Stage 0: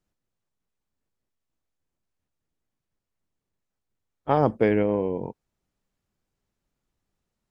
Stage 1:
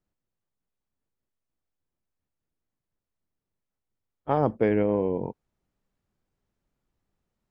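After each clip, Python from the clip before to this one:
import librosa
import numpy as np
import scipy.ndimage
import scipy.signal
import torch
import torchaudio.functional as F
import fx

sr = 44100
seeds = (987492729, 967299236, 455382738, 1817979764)

y = fx.high_shelf(x, sr, hz=2900.0, db=-7.5)
y = fx.rider(y, sr, range_db=10, speed_s=0.5)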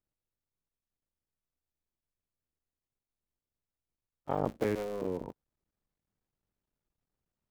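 y = fx.cycle_switch(x, sr, every=3, mode='muted')
y = y * 10.0 ** (-7.0 / 20.0)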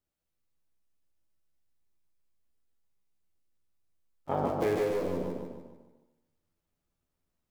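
y = fx.doubler(x, sr, ms=12.0, db=-3.5)
y = fx.echo_feedback(y, sr, ms=148, feedback_pct=43, wet_db=-4.0)
y = fx.rev_freeverb(y, sr, rt60_s=1.0, hf_ratio=0.6, predelay_ms=15, drr_db=7.5)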